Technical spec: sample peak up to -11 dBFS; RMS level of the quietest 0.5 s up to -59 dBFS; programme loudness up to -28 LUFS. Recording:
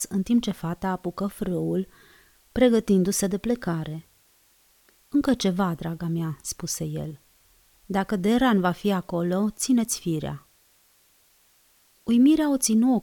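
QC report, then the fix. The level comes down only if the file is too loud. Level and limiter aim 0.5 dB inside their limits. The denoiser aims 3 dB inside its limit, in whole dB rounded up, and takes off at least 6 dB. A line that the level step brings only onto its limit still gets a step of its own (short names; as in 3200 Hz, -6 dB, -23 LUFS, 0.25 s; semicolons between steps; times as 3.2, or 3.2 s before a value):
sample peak -7.0 dBFS: fail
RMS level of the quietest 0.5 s -62 dBFS: OK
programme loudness -24.5 LUFS: fail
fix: gain -4 dB; limiter -11.5 dBFS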